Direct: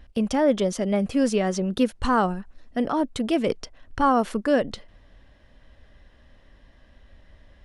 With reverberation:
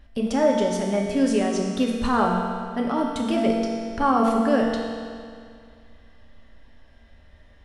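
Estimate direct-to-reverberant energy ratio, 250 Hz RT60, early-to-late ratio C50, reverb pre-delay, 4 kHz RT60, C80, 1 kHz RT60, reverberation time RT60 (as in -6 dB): -1.5 dB, 2.2 s, 1.5 dB, 4 ms, 2.0 s, 2.5 dB, 2.2 s, 2.2 s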